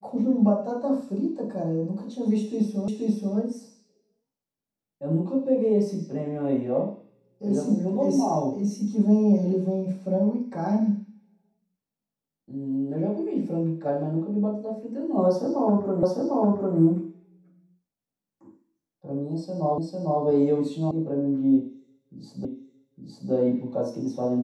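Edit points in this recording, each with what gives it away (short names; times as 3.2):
2.88 repeat of the last 0.48 s
16.03 repeat of the last 0.75 s
19.78 repeat of the last 0.45 s
20.91 sound cut off
22.45 repeat of the last 0.86 s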